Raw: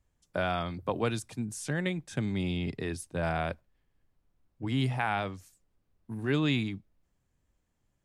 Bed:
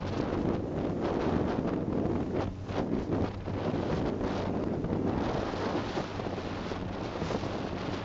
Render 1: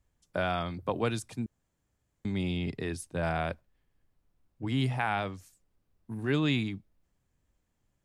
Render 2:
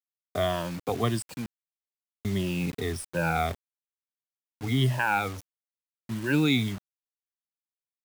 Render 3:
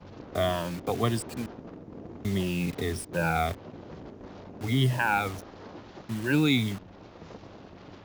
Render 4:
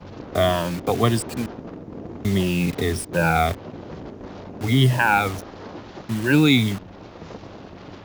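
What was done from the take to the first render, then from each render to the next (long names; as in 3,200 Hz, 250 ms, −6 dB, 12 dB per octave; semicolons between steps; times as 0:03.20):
0:01.46–0:02.25: fill with room tone
rippled gain that drifts along the octave scale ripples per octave 1.3, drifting −1.6 Hz, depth 18 dB; bit reduction 7 bits
mix in bed −13 dB
level +7.5 dB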